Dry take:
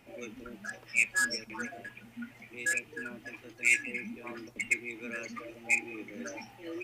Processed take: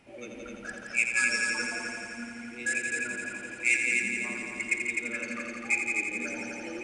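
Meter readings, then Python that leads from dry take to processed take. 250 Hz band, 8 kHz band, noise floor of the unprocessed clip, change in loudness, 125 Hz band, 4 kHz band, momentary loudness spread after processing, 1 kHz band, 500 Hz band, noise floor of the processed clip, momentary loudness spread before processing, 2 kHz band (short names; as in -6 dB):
+3.5 dB, +3.5 dB, -56 dBFS, +3.0 dB, n/a, +3.5 dB, 15 LU, +3.5 dB, +3.0 dB, -44 dBFS, 19 LU, +4.0 dB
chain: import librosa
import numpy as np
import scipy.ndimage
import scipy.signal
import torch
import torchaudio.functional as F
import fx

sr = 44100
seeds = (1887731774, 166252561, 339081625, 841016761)

y = fx.brickwall_lowpass(x, sr, high_hz=11000.0)
y = fx.echo_heads(y, sr, ms=85, heads='all three', feedback_pct=63, wet_db=-7.0)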